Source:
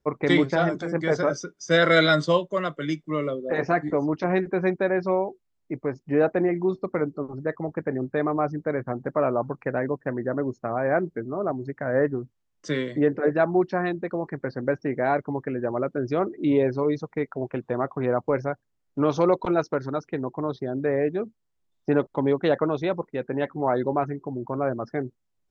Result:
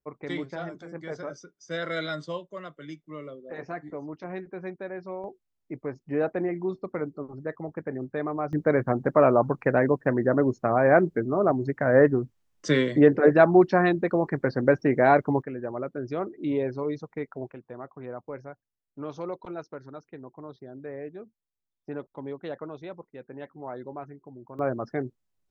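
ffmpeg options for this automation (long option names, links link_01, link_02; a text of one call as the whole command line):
ffmpeg -i in.wav -af "asetnsamples=nb_out_samples=441:pad=0,asendcmd='5.24 volume volume -5.5dB;8.53 volume volume 4.5dB;15.42 volume volume -6dB;17.52 volume volume -14dB;24.59 volume volume -1.5dB',volume=-13dB" out.wav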